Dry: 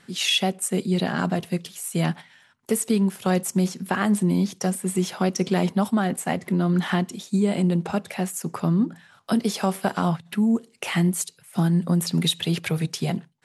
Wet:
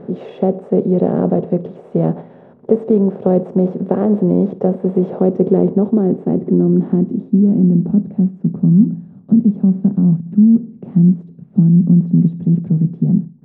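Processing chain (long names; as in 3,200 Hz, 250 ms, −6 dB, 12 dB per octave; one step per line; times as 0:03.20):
compressor on every frequency bin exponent 0.6
low-pass filter sweep 500 Hz → 210 Hz, 0:05.01–0:08.41
level +3 dB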